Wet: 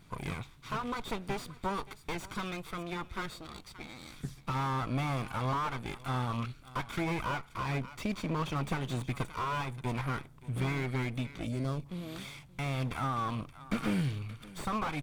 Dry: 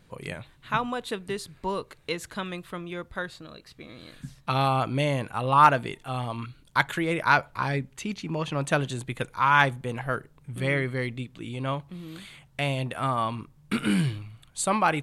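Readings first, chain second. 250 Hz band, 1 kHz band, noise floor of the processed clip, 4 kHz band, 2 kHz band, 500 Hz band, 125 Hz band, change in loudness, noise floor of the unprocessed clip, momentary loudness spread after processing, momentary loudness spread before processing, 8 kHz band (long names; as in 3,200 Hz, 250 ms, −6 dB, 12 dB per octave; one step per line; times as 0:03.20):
−5.0 dB, −10.5 dB, −55 dBFS, −7.5 dB, −11.5 dB, −9.5 dB, −4.0 dB, −8.5 dB, −58 dBFS, 9 LU, 18 LU, −10.5 dB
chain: lower of the sound and its delayed copy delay 0.86 ms
gain on a spectral selection 0:11.47–0:11.86, 680–4,100 Hz −13 dB
downward compressor 4 to 1, threshold −30 dBFS, peak gain reduction 15 dB
on a send: single-tap delay 576 ms −20 dB
on the sum: slew-rate limiting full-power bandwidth 27 Hz
level +1.5 dB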